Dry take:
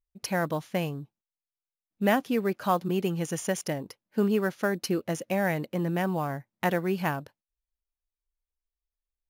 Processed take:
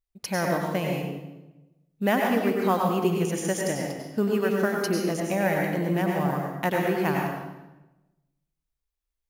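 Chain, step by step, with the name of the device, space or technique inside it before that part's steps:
bathroom (convolution reverb RT60 1.0 s, pre-delay 89 ms, DRR −1 dB)

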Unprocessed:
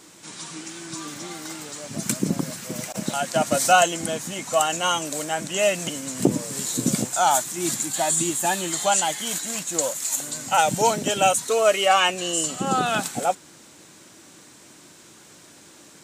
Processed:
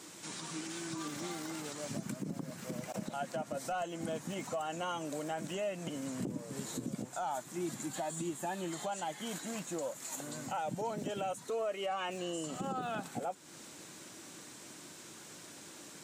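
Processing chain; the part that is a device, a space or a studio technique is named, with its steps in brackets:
podcast mastering chain (high-pass filter 89 Hz; de-essing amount 95%; downward compressor 2.5 to 1, threshold −34 dBFS, peak gain reduction 13.5 dB; brickwall limiter −26 dBFS, peak gain reduction 8 dB; level −2 dB; MP3 96 kbit/s 44,100 Hz)

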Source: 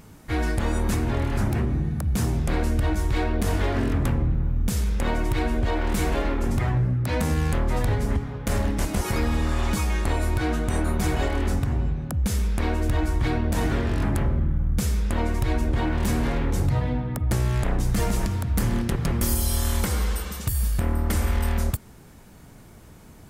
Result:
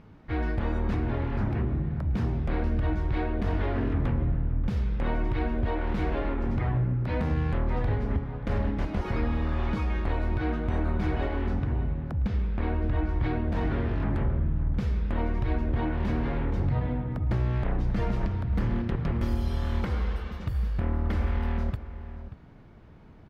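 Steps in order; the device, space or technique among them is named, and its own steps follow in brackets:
0:12.27–0:13.09: high-frequency loss of the air 100 metres
shout across a valley (high-frequency loss of the air 310 metres; slap from a distant wall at 100 metres, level −13 dB)
level −3.5 dB

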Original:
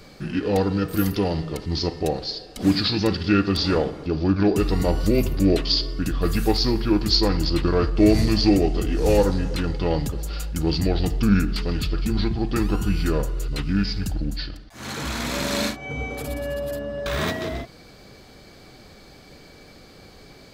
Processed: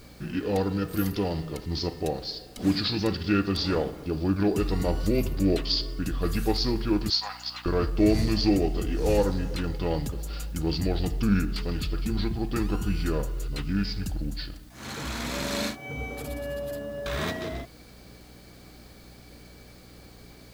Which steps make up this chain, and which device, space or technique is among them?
0:07.10–0:07.66: Chebyshev band-pass filter 720–6,700 Hz, order 4
video cassette with head-switching buzz (hum with harmonics 60 Hz, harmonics 5, −47 dBFS −4 dB per octave; white noise bed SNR 33 dB)
level −5 dB

